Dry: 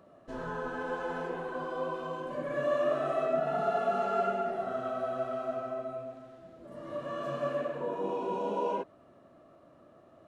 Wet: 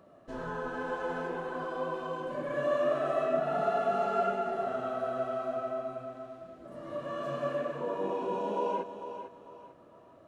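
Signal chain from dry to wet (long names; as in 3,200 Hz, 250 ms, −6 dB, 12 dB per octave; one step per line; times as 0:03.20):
feedback echo with a high-pass in the loop 450 ms, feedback 34%, high-pass 200 Hz, level −9.5 dB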